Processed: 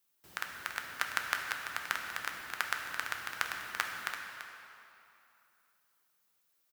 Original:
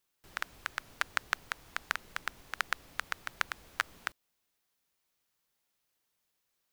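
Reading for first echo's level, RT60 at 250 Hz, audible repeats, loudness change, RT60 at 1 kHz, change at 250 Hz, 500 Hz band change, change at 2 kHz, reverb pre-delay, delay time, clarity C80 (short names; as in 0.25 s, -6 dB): -10.0 dB, 2.6 s, 1, +0.5 dB, 2.9 s, +1.0 dB, +0.5 dB, +1.0 dB, 5 ms, 0.337 s, 3.0 dB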